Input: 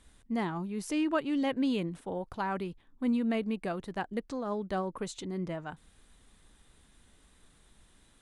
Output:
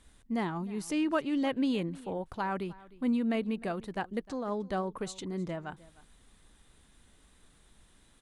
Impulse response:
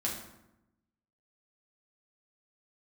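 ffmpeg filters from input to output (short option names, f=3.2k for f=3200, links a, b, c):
-af "aecho=1:1:306:0.0944"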